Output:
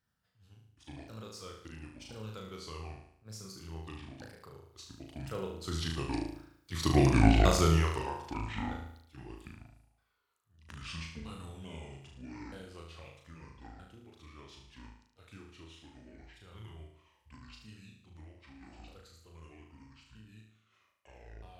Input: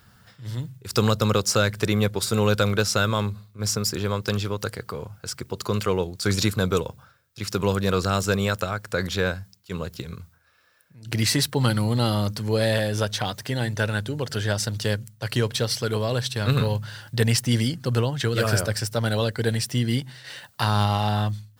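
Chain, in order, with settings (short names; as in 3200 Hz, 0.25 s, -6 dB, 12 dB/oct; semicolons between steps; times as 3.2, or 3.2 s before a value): repeated pitch sweeps -10.5 st, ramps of 1.163 s; Doppler pass-by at 7.15, 32 m/s, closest 11 m; flutter echo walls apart 6.3 m, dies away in 0.67 s; gain -1.5 dB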